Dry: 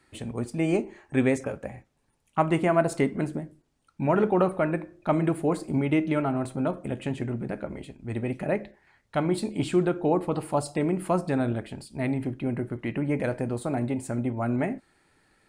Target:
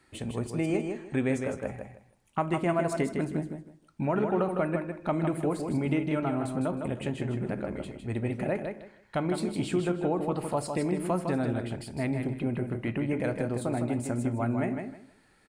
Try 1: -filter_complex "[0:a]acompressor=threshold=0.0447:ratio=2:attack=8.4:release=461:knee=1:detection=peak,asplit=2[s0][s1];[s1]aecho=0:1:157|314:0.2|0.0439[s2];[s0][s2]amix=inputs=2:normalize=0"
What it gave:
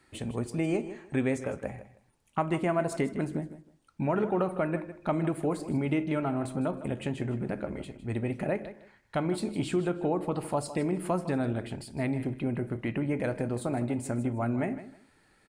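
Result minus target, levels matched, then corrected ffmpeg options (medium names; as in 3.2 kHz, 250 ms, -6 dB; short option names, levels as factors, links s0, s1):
echo-to-direct -8 dB
-filter_complex "[0:a]acompressor=threshold=0.0447:ratio=2:attack=8.4:release=461:knee=1:detection=peak,asplit=2[s0][s1];[s1]aecho=0:1:157|314|471:0.501|0.11|0.0243[s2];[s0][s2]amix=inputs=2:normalize=0"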